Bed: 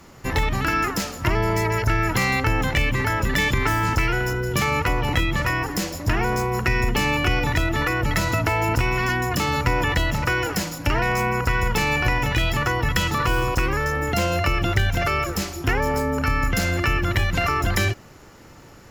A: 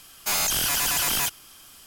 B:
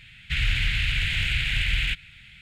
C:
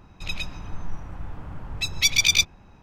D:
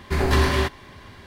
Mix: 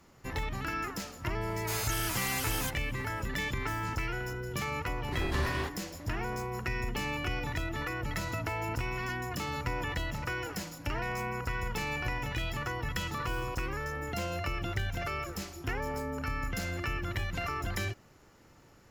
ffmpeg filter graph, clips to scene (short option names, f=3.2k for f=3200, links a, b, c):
-filter_complex "[0:a]volume=-13dB[a];[1:a]atrim=end=1.86,asetpts=PTS-STARTPTS,volume=-12dB,afade=t=in:d=0.004:c=hsin,afade=t=out:st=1.856:d=0.004:c=hsin,adelay=1410[b];[4:a]atrim=end=1.26,asetpts=PTS-STARTPTS,volume=-14dB,afade=t=in:d=0.004:c=hsin,afade=t=out:st=1.256:d=0.004:c=hsin,adelay=220941S[c];[a][b][c]amix=inputs=3:normalize=0"